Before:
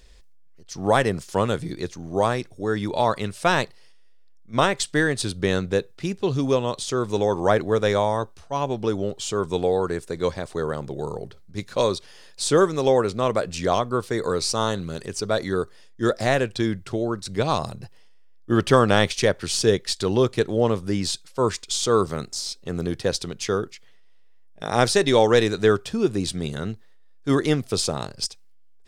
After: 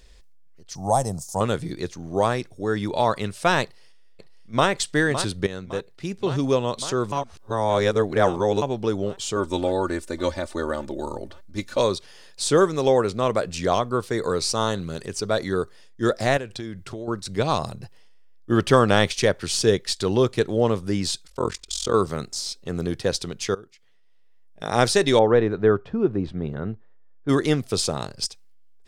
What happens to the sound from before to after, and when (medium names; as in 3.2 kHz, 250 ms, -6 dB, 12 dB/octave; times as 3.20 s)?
0.75–1.41 s: FFT filter 150 Hz 0 dB, 400 Hz -12 dB, 780 Hz +4 dB, 1.6 kHz -21 dB, 2.9 kHz -20 dB, 6.2 kHz +7 dB
3.63–4.68 s: echo throw 560 ms, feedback 75%, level -9.5 dB
5.47–6.44 s: fade in linear, from -13.5 dB
7.12–8.62 s: reverse
9.36–11.79 s: comb 3.4 ms, depth 81%
16.37–17.08 s: compression 4:1, threshold -30 dBFS
21.27–21.94 s: AM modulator 43 Hz, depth 90%
23.55–24.67 s: fade in, from -20 dB
25.19–27.29 s: low-pass 1.4 kHz